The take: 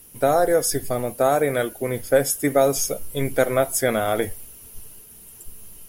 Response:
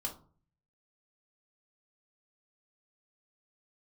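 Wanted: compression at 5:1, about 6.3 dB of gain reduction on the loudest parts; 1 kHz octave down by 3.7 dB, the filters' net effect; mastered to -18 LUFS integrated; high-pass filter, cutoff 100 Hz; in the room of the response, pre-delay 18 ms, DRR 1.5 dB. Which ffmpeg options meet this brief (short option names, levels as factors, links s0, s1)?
-filter_complex "[0:a]highpass=100,equalizer=f=1000:t=o:g=-6.5,acompressor=threshold=0.0891:ratio=5,asplit=2[s0][s1];[1:a]atrim=start_sample=2205,adelay=18[s2];[s1][s2]afir=irnorm=-1:irlink=0,volume=0.794[s3];[s0][s3]amix=inputs=2:normalize=0,volume=2"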